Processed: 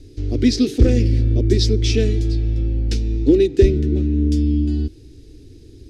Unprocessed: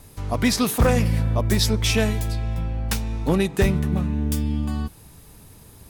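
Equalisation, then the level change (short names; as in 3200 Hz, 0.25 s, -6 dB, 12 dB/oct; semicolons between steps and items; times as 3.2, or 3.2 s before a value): synth low-pass 5100 Hz, resonance Q 1.9; resonant low shelf 470 Hz +12 dB, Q 3; fixed phaser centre 440 Hz, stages 4; -4.0 dB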